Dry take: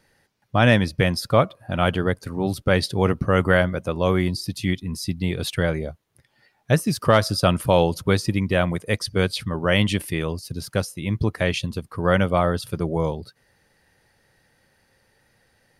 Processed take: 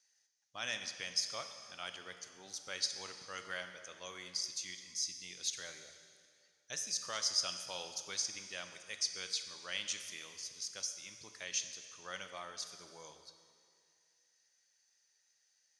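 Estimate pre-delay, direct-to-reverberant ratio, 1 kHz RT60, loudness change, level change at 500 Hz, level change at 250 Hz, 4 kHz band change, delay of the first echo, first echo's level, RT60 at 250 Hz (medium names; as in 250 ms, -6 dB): 8 ms, 7.5 dB, 2.2 s, -17.0 dB, -30.0 dB, -37.0 dB, -8.5 dB, no echo, no echo, 2.2 s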